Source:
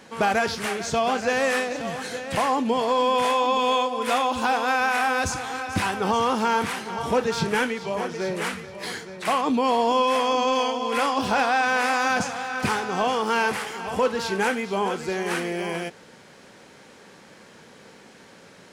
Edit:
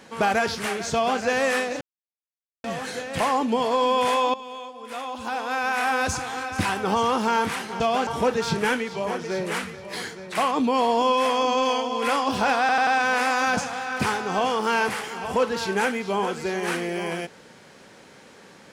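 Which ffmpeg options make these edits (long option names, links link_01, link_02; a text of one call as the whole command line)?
ffmpeg -i in.wav -filter_complex "[0:a]asplit=8[link_01][link_02][link_03][link_04][link_05][link_06][link_07][link_08];[link_01]atrim=end=1.81,asetpts=PTS-STARTPTS,afade=type=out:start_time=1.806:duration=0.004:curve=hsin,apad=pad_dur=0.83[link_09];[link_02]atrim=start=1.81:end=3.51,asetpts=PTS-STARTPTS,afade=type=in:duration=0.004:curve=hsin,afade=type=out:start_time=1.696:duration=0.004:curve=hsin:silence=0.158489[link_10];[link_03]atrim=start=3.51:end=6.972,asetpts=PTS-STARTPTS,afade=type=in:duration=1.61:curve=qua:silence=0.158489[link_11];[link_04]atrim=start=0.928:end=1.202[link_12];[link_05]atrim=start=6.968:end=11.592[link_13];[link_06]atrim=start=11.498:end=11.592[link_14];[link_07]atrim=start=11.498:end=11.592[link_15];[link_08]atrim=start=11.498[link_16];[link_09][link_10][link_11]concat=n=3:v=0:a=1[link_17];[link_17][link_12]acrossfade=duration=0.004:curve1=hsin:curve2=hsin[link_18];[link_18][link_13]acrossfade=duration=0.004:curve1=hsin:curve2=hsin[link_19];[link_19][link_14]acrossfade=duration=0.004:curve1=hsin:curve2=hsin[link_20];[link_20][link_15]acrossfade=duration=0.004:curve1=hsin:curve2=hsin[link_21];[link_21][link_16]acrossfade=duration=0.004:curve1=hsin:curve2=hsin" out.wav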